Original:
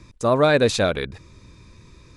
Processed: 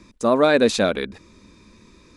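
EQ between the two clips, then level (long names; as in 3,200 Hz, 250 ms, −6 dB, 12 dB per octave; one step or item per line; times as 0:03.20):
low shelf with overshoot 170 Hz −6 dB, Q 3
0.0 dB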